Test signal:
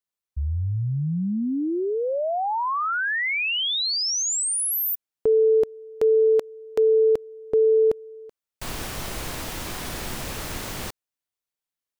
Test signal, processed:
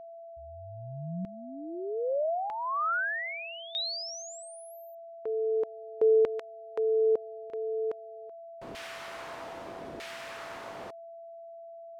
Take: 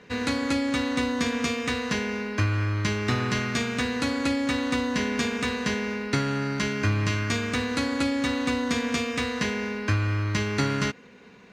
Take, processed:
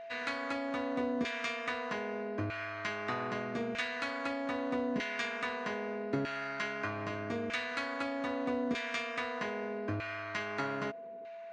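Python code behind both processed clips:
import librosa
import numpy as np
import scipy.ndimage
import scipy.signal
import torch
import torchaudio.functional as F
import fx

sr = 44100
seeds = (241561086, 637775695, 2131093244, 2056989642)

y = fx.filter_lfo_bandpass(x, sr, shape='saw_down', hz=0.8, low_hz=370.0, high_hz=2400.0, q=0.97)
y = y + 10.0 ** (-40.0 / 20.0) * np.sin(2.0 * np.pi * 670.0 * np.arange(len(y)) / sr)
y = F.gain(torch.from_numpy(y), -3.5).numpy()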